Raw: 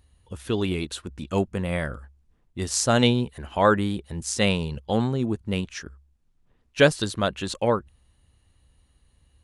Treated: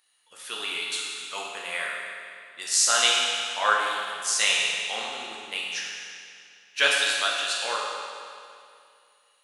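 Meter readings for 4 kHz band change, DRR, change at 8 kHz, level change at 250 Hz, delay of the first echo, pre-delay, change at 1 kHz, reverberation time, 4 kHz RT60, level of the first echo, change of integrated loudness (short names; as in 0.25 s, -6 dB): +7.0 dB, -4.0 dB, +6.5 dB, -25.0 dB, none, 10 ms, 0.0 dB, 2.4 s, 2.2 s, none, 0.0 dB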